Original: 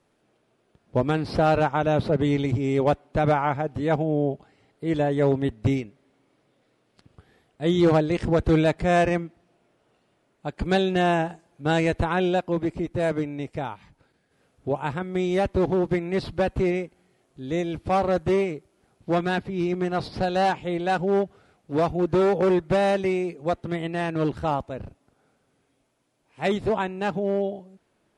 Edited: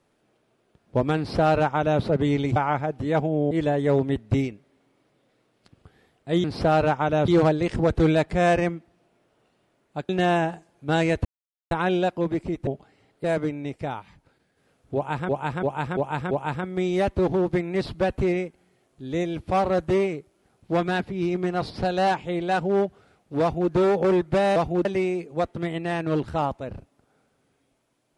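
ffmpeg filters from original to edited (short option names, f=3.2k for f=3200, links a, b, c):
-filter_complex "[0:a]asplit=15[a][b][c][d][e][f][g][h][i][j][k][l][m][n][o];[a]atrim=end=2.562[p];[b]atrim=start=3.318:end=4.272[q];[c]atrim=start=4.838:end=7.772[r];[d]atrim=start=1.178:end=2.022[s];[e]atrim=start=7.768:end=10.582[t];[f]atrim=start=10.858:end=12.02,asetpts=PTS-STARTPTS,afade=t=out:st=1.158:d=0.004:c=hsin,apad=pad_dur=0.46[u];[g]atrim=start=12.02:end=12.982,asetpts=PTS-STARTPTS,afade=t=in:d=0.004:c=hsin[v];[h]atrim=start=4.268:end=4.842[w];[i]atrim=start=12.978:end=15.032[x];[j]atrim=start=14.688:end=15.032[y];[k]atrim=start=14.688:end=15.032[z];[l]atrim=start=14.688:end=15.032[aa];[m]atrim=start=14.688:end=22.942[ab];[n]atrim=start=21.798:end=22.092[ac];[o]atrim=start=22.938[ad];[p][q]acrossfade=d=0.004:c1=hsin:c2=hsin[ae];[ae][r]acrossfade=d=0.004:c1=hsin:c2=hsin[af];[af][s]acrossfade=d=0.004:c1=hsin:c2=hsin[ag];[ag][t]acrossfade=d=0.004:c1=hsin:c2=hsin[ah];[u][v]concat=n=2:v=0:a=1[ai];[ah][ai]acrossfade=d=0.004:c1=hsin:c2=hsin[aj];[aj][w]acrossfade=d=0.004:c1=hsin:c2=hsin[ak];[ak][x]acrossfade=d=0.004:c1=hsin:c2=hsin[al];[al][y]acrossfade=d=0.004:c1=hsin:c2=hsin[am];[am][z]acrossfade=d=0.004:c1=hsin:c2=hsin[an];[an][aa]acrossfade=d=0.004:c1=hsin:c2=hsin[ao];[ao][ab]acrossfade=d=0.004:c1=hsin:c2=hsin[ap];[ap][ac]acrossfade=d=0.004:c1=hsin:c2=hsin[aq];[aq][ad]acrossfade=d=0.004:c1=hsin:c2=hsin"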